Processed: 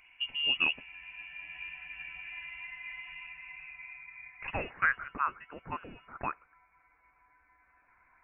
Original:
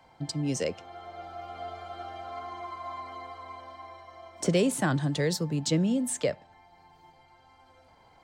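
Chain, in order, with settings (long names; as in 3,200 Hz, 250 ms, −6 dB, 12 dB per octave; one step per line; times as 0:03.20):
high-pass filter sweep 250 Hz → 1,700 Hz, 0:03.09–0:04.97
voice inversion scrambler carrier 3,100 Hz
harmonic and percussive parts rebalanced harmonic −8 dB
level +1.5 dB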